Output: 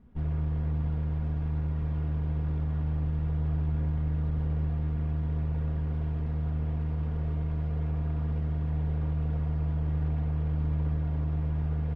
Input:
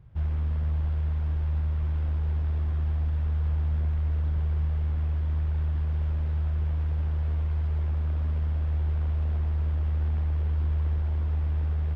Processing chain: comb filter that takes the minimum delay 4.2 ms; treble shelf 2.1 kHz -8 dB; de-hum 45.45 Hz, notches 35; on a send: delay 93 ms -12 dB

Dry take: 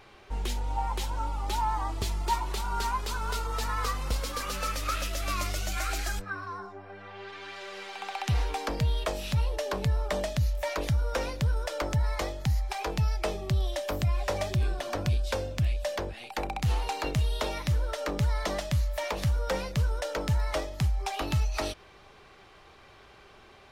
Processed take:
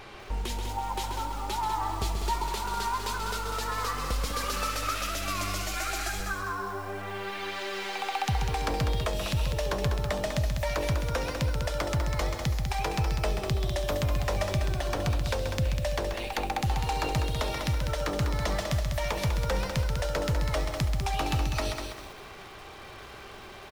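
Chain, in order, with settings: compression 2:1, threshold -42 dBFS, peak gain reduction 11 dB; on a send: delay 133 ms -7.5 dB; on the sum: bit-crushed delay 198 ms, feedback 35%, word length 9-bit, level -6 dB; trim +8 dB

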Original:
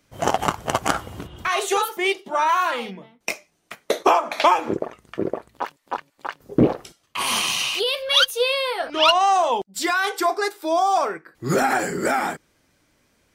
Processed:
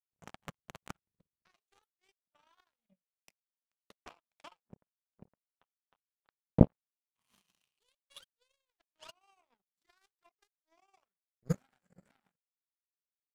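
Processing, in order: resonant low shelf 250 Hz +10 dB, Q 3; power-law waveshaper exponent 3; transient shaper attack +8 dB, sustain -3 dB; trim -14 dB

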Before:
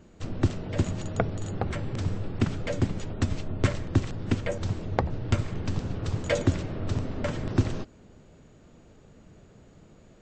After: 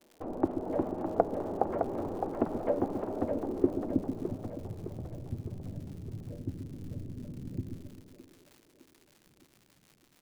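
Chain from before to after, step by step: expander -44 dBFS; in parallel at +2 dB: compression, threshold -34 dBFS, peak gain reduction 17 dB; on the sum: low-pass sweep 820 Hz -> 140 Hz, 3.12–4.24 s; crackle 110 per s -39 dBFS; resonant low shelf 200 Hz -12.5 dB, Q 1.5; on a send: two-band feedback delay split 360 Hz, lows 130 ms, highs 611 ms, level -5.5 dB; on the sum: trim -6 dB

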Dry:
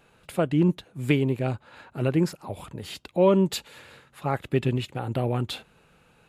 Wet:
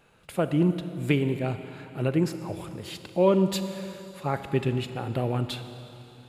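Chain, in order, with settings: Schroeder reverb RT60 3.2 s, combs from 28 ms, DRR 9.5 dB; trim -1.5 dB

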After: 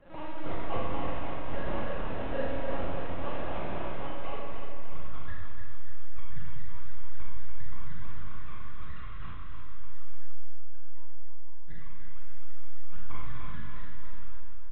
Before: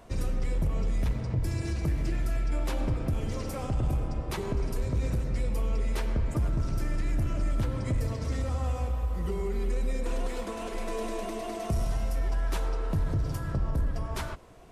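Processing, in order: FFT band-reject 180–1000 Hz; peak limiter -24.5 dBFS, peak gain reduction 5 dB; low-pass sweep 3 kHz -> 190 Hz, 3.58–5.32 s; feedback comb 280 Hz, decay 0.51 s, harmonics all, mix 100%; decimation with a swept rate 32×, swing 60% 3.9 Hz; overdrive pedal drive 16 dB, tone 1.1 kHz, clips at -39.5 dBFS; LPC vocoder at 8 kHz pitch kept; doubling 23 ms -11 dB; feedback delay 295 ms, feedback 49%, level -6 dB; Schroeder reverb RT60 1.1 s, combs from 33 ms, DRR -2.5 dB; trim +17 dB

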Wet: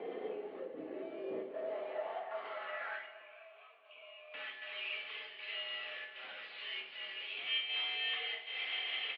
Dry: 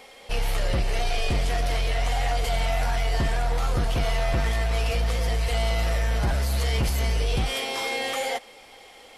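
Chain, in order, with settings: compression 6:1, threshold -38 dBFS, peak gain reduction 15.5 dB; peak limiter -39.5 dBFS, peak gain reduction 10 dB; 3.06–4.34 s: vowel filter a; short-mantissa float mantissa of 4-bit; band-pass sweep 400 Hz -> 2.8 kHz, 1.15–3.46 s; square tremolo 1.3 Hz, depth 60%, duty 85%; feedback delay 230 ms, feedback 52%, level -17.5 dB; simulated room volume 400 m³, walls furnished, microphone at 2.5 m; mistuned SSB -63 Hz 330–3600 Hz; trim +13.5 dB; MP3 40 kbps 24 kHz

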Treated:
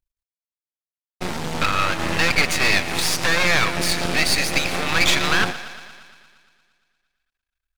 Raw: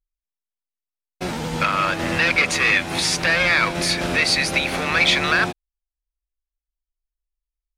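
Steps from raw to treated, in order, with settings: thinning echo 116 ms, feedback 69%, high-pass 310 Hz, level -14.5 dB; half-wave rectifier; trim +3.5 dB

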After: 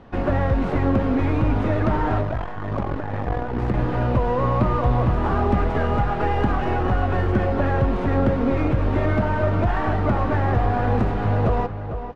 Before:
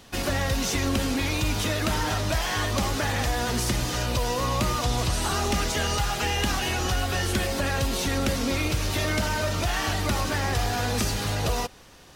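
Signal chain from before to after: tracing distortion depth 0.48 ms; low-pass 1.2 kHz 12 dB/octave; echo from a far wall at 77 m, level -9 dB; 2.21–3.74 s: transformer saturation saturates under 130 Hz; trim +6.5 dB

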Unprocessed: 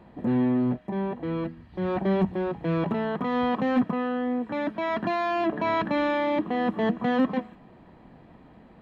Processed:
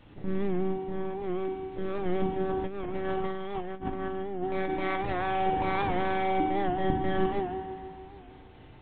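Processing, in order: bit crusher 9-bit; peaking EQ 630 Hz -4.5 dB 1.9 oct; monotone LPC vocoder at 8 kHz 190 Hz; FDN reverb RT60 2.3 s, low-frequency decay 1.05×, high-frequency decay 0.7×, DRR -2.5 dB; 2.49–5.13 s: compressor with a negative ratio -28 dBFS, ratio -0.5; warped record 78 rpm, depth 100 cents; trim -3 dB

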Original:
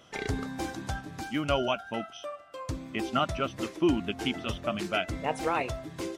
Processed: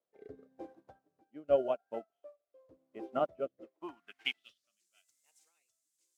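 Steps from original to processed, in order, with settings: added noise blue -43 dBFS; rotary cabinet horn 0.9 Hz; band-pass sweep 510 Hz -> 7.3 kHz, 3.58–4.79 s; upward expansion 2.5:1, over -53 dBFS; trim +9 dB

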